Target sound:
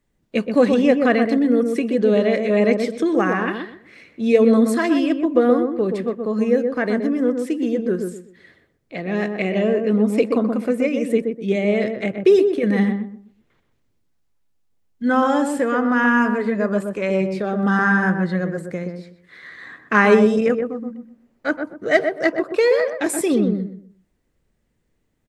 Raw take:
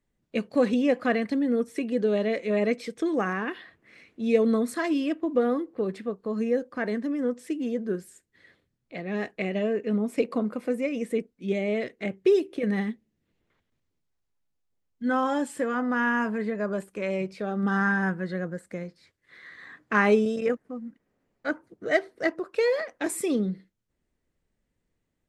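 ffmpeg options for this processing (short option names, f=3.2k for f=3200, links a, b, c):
-filter_complex "[0:a]asplit=2[a][b];[b]adelay=125,lowpass=f=1k:p=1,volume=-4dB,asplit=2[c][d];[d]adelay=125,lowpass=f=1k:p=1,volume=0.29,asplit=2[e][f];[f]adelay=125,lowpass=f=1k:p=1,volume=0.29,asplit=2[g][h];[h]adelay=125,lowpass=f=1k:p=1,volume=0.29[i];[a][c][e][g][i]amix=inputs=5:normalize=0,volume=7dB"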